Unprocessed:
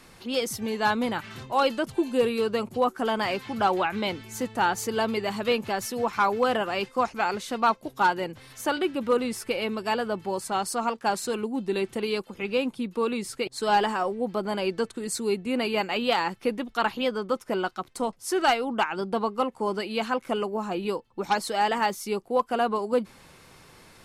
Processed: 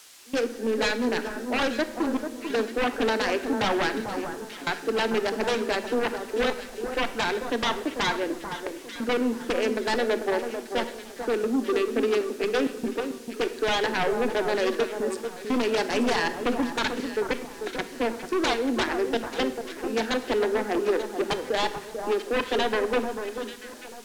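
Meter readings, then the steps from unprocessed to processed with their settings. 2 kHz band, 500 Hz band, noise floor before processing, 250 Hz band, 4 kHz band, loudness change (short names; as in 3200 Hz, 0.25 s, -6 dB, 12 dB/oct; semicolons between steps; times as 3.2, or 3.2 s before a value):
+2.0 dB, +1.5 dB, -53 dBFS, +1.5 dB, +1.5 dB, 0.0 dB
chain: Wiener smoothing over 41 samples; steep high-pass 230 Hz 96 dB/oct; bell 1700 Hz +11 dB 0.61 oct; compressor 3:1, threshold -26 dBFS, peak gain reduction 9.5 dB; sine folder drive 15 dB, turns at -11.5 dBFS; step gate "..xxxxxxxxx.x" 90 bpm -24 dB; added noise blue -32 dBFS; air absorption 55 m; echo with dull and thin repeats by turns 0.443 s, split 1500 Hz, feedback 54%, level -7 dB; shoebox room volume 450 m³, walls mixed, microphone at 0.4 m; gain -9 dB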